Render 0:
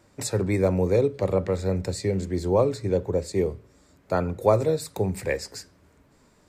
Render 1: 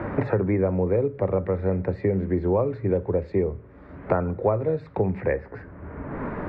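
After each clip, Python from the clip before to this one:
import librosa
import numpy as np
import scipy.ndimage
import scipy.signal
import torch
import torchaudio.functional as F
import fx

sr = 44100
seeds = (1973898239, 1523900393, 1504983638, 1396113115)

y = scipy.signal.sosfilt(scipy.signal.butter(4, 2000.0, 'lowpass', fs=sr, output='sos'), x)
y = fx.band_squash(y, sr, depth_pct=100)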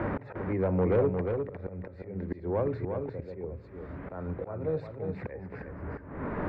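y = fx.auto_swell(x, sr, attack_ms=478.0)
y = 10.0 ** (-19.5 / 20.0) * np.tanh(y / 10.0 ** (-19.5 / 20.0))
y = y + 10.0 ** (-5.5 / 20.0) * np.pad(y, (int(354 * sr / 1000.0), 0))[:len(y)]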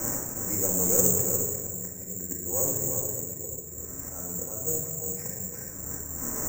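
y = fx.room_shoebox(x, sr, seeds[0], volume_m3=1200.0, walls='mixed', distance_m=2.1)
y = (np.kron(scipy.signal.resample_poly(y, 1, 6), np.eye(6)[0]) * 6)[:len(y)]
y = fx.doppler_dist(y, sr, depth_ms=0.16)
y = y * 10.0 ** (-8.0 / 20.0)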